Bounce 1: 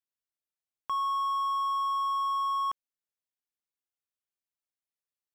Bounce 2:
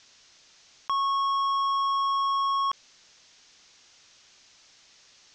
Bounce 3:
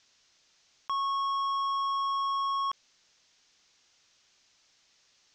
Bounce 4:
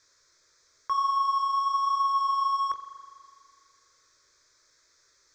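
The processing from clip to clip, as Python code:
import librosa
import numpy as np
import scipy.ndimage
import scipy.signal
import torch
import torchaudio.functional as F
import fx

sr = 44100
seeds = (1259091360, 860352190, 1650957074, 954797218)

y1 = scipy.signal.sosfilt(scipy.signal.butter(8, 6500.0, 'lowpass', fs=sr, output='sos'), x)
y1 = fx.high_shelf(y1, sr, hz=2500.0, db=11.5)
y1 = fx.env_flatten(y1, sr, amount_pct=50)
y1 = y1 * librosa.db_to_amplitude(1.5)
y2 = fx.upward_expand(y1, sr, threshold_db=-36.0, expansion=1.5)
y2 = y2 * librosa.db_to_amplitude(-4.0)
y3 = fx.chorus_voices(y2, sr, voices=2, hz=0.95, base_ms=19, depth_ms=4.4, mix_pct=30)
y3 = fx.fixed_phaser(y3, sr, hz=780.0, stages=6)
y3 = fx.rev_spring(y3, sr, rt60_s=2.2, pass_ms=(40,), chirp_ms=25, drr_db=8.0)
y3 = y3 * librosa.db_to_amplitude(8.5)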